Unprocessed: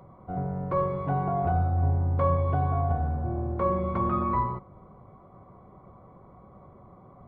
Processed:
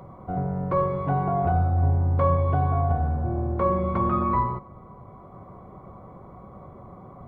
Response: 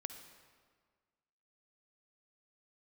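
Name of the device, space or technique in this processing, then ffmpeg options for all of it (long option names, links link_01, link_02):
ducked reverb: -filter_complex "[0:a]asplit=3[link_01][link_02][link_03];[1:a]atrim=start_sample=2205[link_04];[link_02][link_04]afir=irnorm=-1:irlink=0[link_05];[link_03]apad=whole_len=321016[link_06];[link_05][link_06]sidechaincompress=threshold=-38dB:ratio=8:attack=16:release=796,volume=0.5dB[link_07];[link_01][link_07]amix=inputs=2:normalize=0,volume=2dB"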